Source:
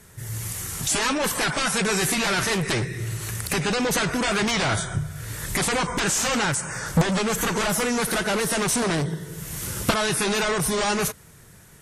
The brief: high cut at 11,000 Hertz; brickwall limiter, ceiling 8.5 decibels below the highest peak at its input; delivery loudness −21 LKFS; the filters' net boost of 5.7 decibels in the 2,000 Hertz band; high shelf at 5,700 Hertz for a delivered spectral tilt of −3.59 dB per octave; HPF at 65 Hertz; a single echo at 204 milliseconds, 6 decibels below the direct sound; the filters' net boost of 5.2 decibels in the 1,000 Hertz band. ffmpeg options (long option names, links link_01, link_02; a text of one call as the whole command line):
ffmpeg -i in.wav -af "highpass=65,lowpass=11000,equalizer=frequency=1000:width_type=o:gain=5,equalizer=frequency=2000:width_type=o:gain=6.5,highshelf=frequency=5700:gain=-7.5,alimiter=limit=-14dB:level=0:latency=1,aecho=1:1:204:0.501,volume=1dB" out.wav